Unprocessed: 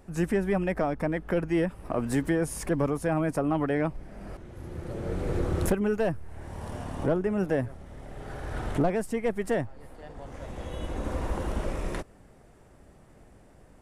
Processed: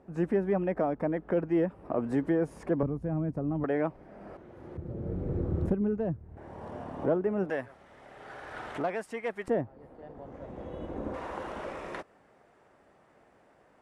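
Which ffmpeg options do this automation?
ffmpeg -i in.wav -af "asetnsamples=nb_out_samples=441:pad=0,asendcmd='2.83 bandpass f 110;3.64 bandpass f 630;4.77 bandpass f 150;6.37 bandpass f 530;7.5 bandpass f 1600;9.48 bandpass f 360;11.14 bandpass f 1200',bandpass=frequency=440:width_type=q:width=0.56:csg=0" out.wav

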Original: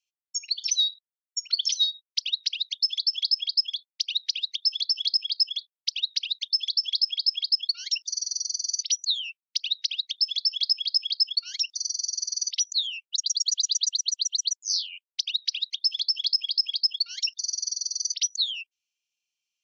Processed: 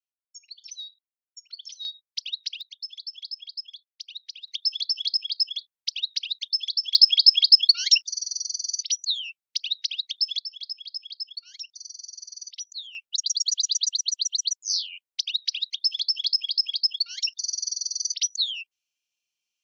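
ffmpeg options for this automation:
ffmpeg -i in.wav -af "asetnsamples=nb_out_samples=441:pad=0,asendcmd='1.85 volume volume -4.5dB;2.61 volume volume -12dB;4.48 volume volume -1dB;6.95 volume volume 9.5dB;8.01 volume volume -0.5dB;10.39 volume volume -11dB;12.95 volume volume 0.5dB',volume=-15.5dB" out.wav

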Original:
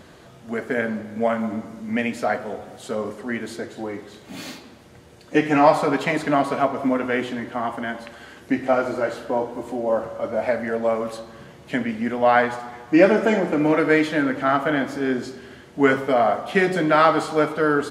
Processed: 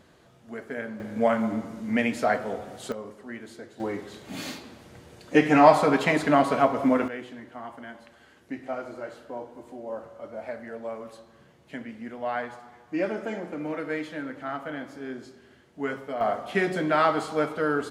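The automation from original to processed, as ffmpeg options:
ffmpeg -i in.wav -af "asetnsamples=nb_out_samples=441:pad=0,asendcmd='1 volume volume -1dB;2.92 volume volume -11.5dB;3.8 volume volume -0.5dB;7.08 volume volume -13.5dB;16.21 volume volume -6dB',volume=-10.5dB" out.wav

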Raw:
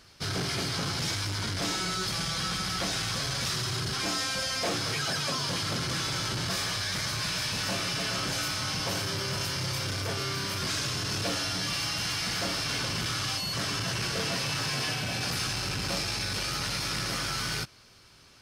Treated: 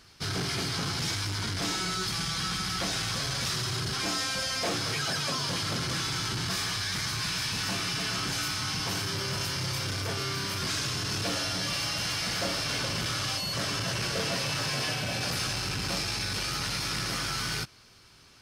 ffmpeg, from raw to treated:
ffmpeg -i in.wav -af "asetnsamples=nb_out_samples=441:pad=0,asendcmd='2.03 equalizer g -11.5;2.81 equalizer g -1.5;6.01 equalizer g -10.5;9.14 equalizer g -3;11.34 equalizer g 4.5;15.58 equalizer g -3',equalizer=frequency=570:width_type=o:width=0.35:gain=-5" out.wav

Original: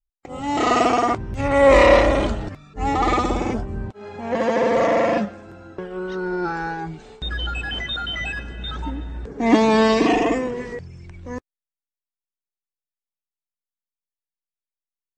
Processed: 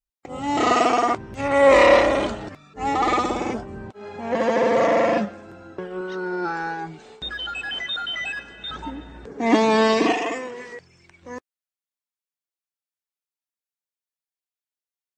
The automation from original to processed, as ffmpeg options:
ffmpeg -i in.wav -af "asetnsamples=nb_out_samples=441:pad=0,asendcmd='0.72 highpass f 280;3.95 highpass f 130;6.01 highpass f 300;7.31 highpass f 710;8.7 highpass f 260;10.12 highpass f 1000;11.22 highpass f 470',highpass=frequency=74:poles=1" out.wav

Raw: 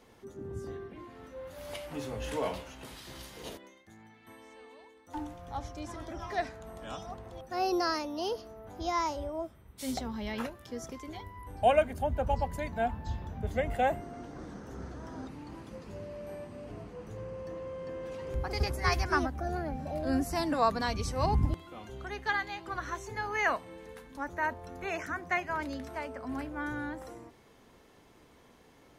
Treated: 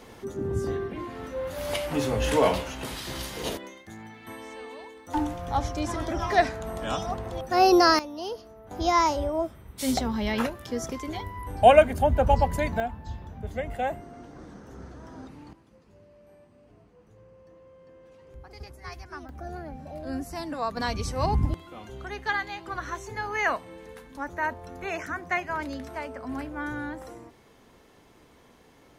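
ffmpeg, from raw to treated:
ffmpeg -i in.wav -af "asetnsamples=nb_out_samples=441:pad=0,asendcmd='7.99 volume volume -0.5dB;8.71 volume volume 9dB;12.8 volume volume -1dB;15.53 volume volume -12.5dB;19.29 volume volume -3.5dB;20.77 volume volume 3dB',volume=11.5dB" out.wav

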